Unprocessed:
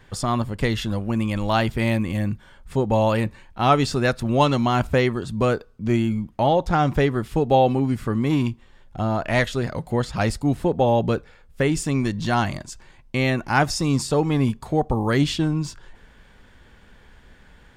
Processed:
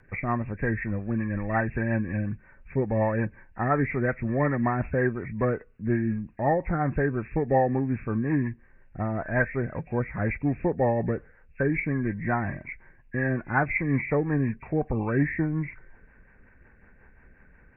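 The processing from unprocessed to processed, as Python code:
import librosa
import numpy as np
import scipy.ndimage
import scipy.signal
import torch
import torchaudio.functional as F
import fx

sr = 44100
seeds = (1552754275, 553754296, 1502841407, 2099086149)

y = fx.freq_compress(x, sr, knee_hz=1500.0, ratio=4.0)
y = fx.rotary(y, sr, hz=5.5)
y = y * 10.0 ** (-3.5 / 20.0)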